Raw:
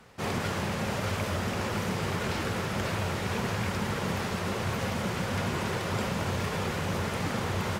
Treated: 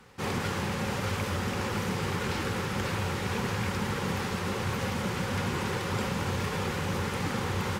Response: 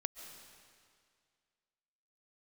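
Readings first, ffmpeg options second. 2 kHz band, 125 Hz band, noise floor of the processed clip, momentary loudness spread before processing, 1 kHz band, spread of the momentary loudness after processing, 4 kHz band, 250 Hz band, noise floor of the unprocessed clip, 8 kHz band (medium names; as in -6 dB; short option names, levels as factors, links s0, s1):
0.0 dB, 0.0 dB, -33 dBFS, 1 LU, 0.0 dB, 1 LU, 0.0 dB, 0.0 dB, -33 dBFS, 0.0 dB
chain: -af "asuperstop=centerf=650:order=4:qfactor=5.6"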